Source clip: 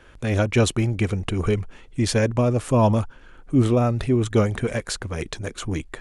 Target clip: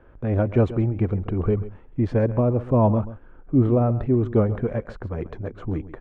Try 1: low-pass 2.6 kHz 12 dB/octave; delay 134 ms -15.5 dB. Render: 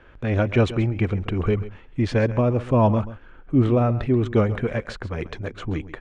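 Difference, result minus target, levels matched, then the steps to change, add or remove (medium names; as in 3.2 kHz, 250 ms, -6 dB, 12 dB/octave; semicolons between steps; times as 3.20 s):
2 kHz band +9.5 dB
change: low-pass 1 kHz 12 dB/octave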